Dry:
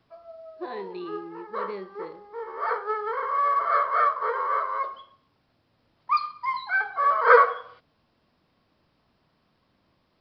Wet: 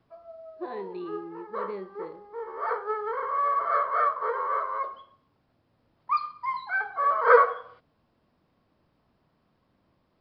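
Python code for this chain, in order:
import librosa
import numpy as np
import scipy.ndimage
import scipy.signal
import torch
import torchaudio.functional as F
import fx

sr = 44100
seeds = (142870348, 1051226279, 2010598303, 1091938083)

y = fx.high_shelf(x, sr, hz=2000.0, db=-9.5)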